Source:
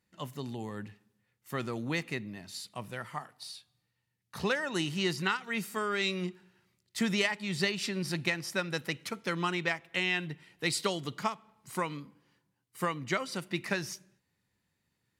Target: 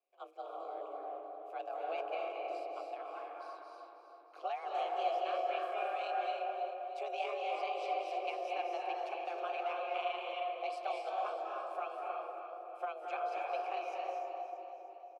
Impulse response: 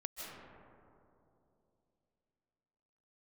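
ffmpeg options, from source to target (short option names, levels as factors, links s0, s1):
-filter_complex "[0:a]aeval=exprs='val(0)*sin(2*PI*78*n/s)':c=same,afreqshift=270,asplit=2[s0][s1];[s1]alimiter=level_in=1.19:limit=0.0631:level=0:latency=1,volume=0.841,volume=0.891[s2];[s0][s2]amix=inputs=2:normalize=0,asplit=3[s3][s4][s5];[s3]bandpass=f=730:t=q:w=8,volume=1[s6];[s4]bandpass=f=1090:t=q:w=8,volume=0.501[s7];[s5]bandpass=f=2440:t=q:w=8,volume=0.355[s8];[s6][s7][s8]amix=inputs=3:normalize=0,aecho=1:1:315|630|945|1260|1575:0.316|0.158|0.0791|0.0395|0.0198[s9];[1:a]atrim=start_sample=2205,asetrate=30429,aresample=44100[s10];[s9][s10]afir=irnorm=-1:irlink=0,volume=1.12"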